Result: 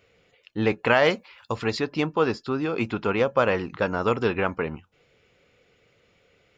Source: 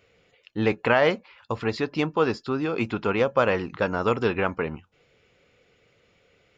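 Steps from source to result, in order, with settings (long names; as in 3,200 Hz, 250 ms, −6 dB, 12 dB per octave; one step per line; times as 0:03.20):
0:00.87–0:01.79: high-shelf EQ 4,100 Hz +9.5 dB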